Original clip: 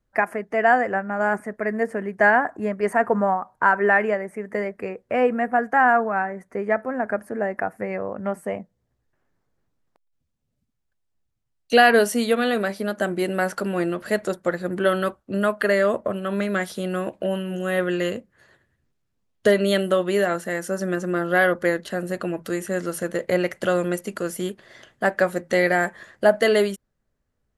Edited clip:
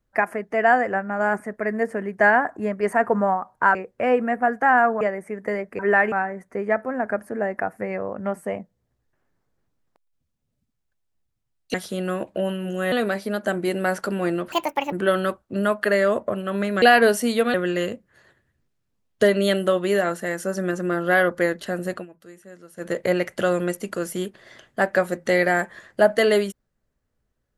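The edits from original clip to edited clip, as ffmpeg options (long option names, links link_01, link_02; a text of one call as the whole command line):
ffmpeg -i in.wav -filter_complex "[0:a]asplit=13[link_01][link_02][link_03][link_04][link_05][link_06][link_07][link_08][link_09][link_10][link_11][link_12][link_13];[link_01]atrim=end=3.752[link_14];[link_02]atrim=start=4.858:end=6.122[link_15];[link_03]atrim=start=4.078:end=4.862[link_16];[link_04]atrim=start=3.748:end=4.082[link_17];[link_05]atrim=start=6.118:end=11.742[link_18];[link_06]atrim=start=16.598:end=17.782[link_19];[link_07]atrim=start=12.458:end=14.064[link_20];[link_08]atrim=start=14.06:end=14.7,asetpts=PTS-STARTPTS,asetrate=70560,aresample=44100[link_21];[link_09]atrim=start=14.696:end=16.602[link_22];[link_10]atrim=start=11.738:end=12.462[link_23];[link_11]atrim=start=17.778:end=22.3,asetpts=PTS-STARTPTS,afade=type=out:start_time=4.402:duration=0.12:silence=0.11885[link_24];[link_12]atrim=start=22.3:end=23,asetpts=PTS-STARTPTS,volume=-18.5dB[link_25];[link_13]atrim=start=23,asetpts=PTS-STARTPTS,afade=type=in:duration=0.12:silence=0.11885[link_26];[link_14][link_15]acrossfade=duration=0.004:curve1=hsin:curve2=hsin[link_27];[link_27][link_16]acrossfade=duration=0.004:curve1=hsin:curve2=hsin[link_28];[link_28][link_17]acrossfade=duration=0.004:curve1=hsin:curve2=hsin[link_29];[link_29][link_18]acrossfade=duration=0.004:curve1=hsin:curve2=hsin[link_30];[link_30][link_19]acrossfade=duration=0.004:curve1=hsin:curve2=hsin[link_31];[link_31][link_20]acrossfade=duration=0.004:curve1=hsin:curve2=hsin[link_32];[link_32][link_21]acrossfade=duration=0.004:curve1=hsin:curve2=hsin[link_33];[link_33][link_22]acrossfade=duration=0.004:curve1=hsin:curve2=hsin[link_34];[link_34][link_23]acrossfade=duration=0.004:curve1=hsin:curve2=hsin[link_35];[link_24][link_25][link_26]concat=n=3:v=0:a=1[link_36];[link_35][link_36]acrossfade=duration=0.004:curve1=hsin:curve2=hsin" out.wav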